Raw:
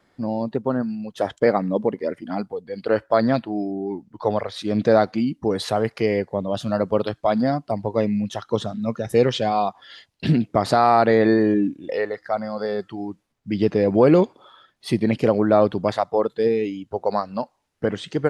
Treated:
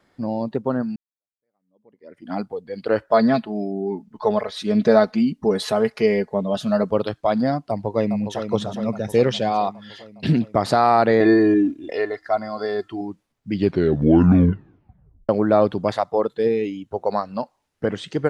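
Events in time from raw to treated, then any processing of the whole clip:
0.96–2.32 s: fade in exponential
3.07–6.90 s: comb 4.7 ms
7.69–8.48 s: echo throw 410 ms, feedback 65%, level -8 dB
11.20–13.01 s: comb 2.9 ms
13.52 s: tape stop 1.77 s
16.34–17.30 s: band-stop 4.8 kHz

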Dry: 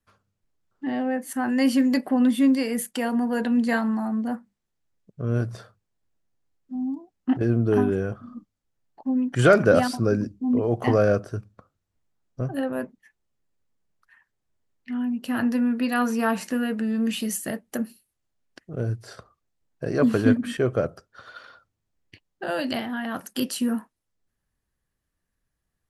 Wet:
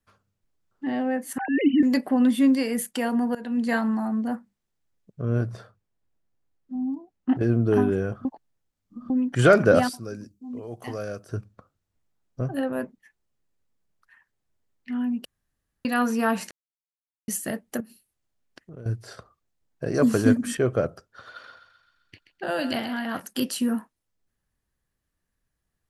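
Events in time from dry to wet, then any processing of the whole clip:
1.38–1.83 s: formants replaced by sine waves
3.35–3.90 s: fade in equal-power, from -19.5 dB
5.25–7.37 s: treble shelf 3.3 kHz -6.5 dB
8.25–9.10 s: reverse
9.89–11.29 s: pre-emphasis filter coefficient 0.8
15.25–15.85 s: room tone
16.51–17.28 s: mute
17.80–18.86 s: compression 3:1, threshold -41 dBFS
19.94–20.55 s: resonant high shelf 4.7 kHz +8.5 dB, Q 1.5
21.31–23.20 s: thinning echo 130 ms, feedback 61%, high-pass 770 Hz, level -9 dB

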